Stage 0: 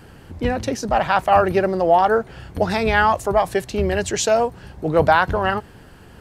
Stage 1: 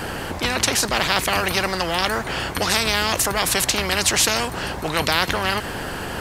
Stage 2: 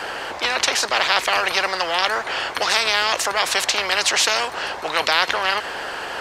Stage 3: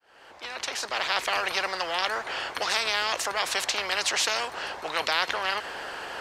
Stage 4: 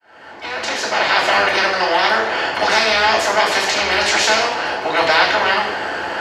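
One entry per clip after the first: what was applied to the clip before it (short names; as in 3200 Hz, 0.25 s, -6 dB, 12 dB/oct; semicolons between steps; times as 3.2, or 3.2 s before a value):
spectral compressor 4:1
three-band isolator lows -21 dB, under 430 Hz, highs -15 dB, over 6800 Hz; gain +2.5 dB
opening faded in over 1.25 s; gain -7.5 dB
reverb RT60 0.90 s, pre-delay 3 ms, DRR -7.5 dB; gain -3 dB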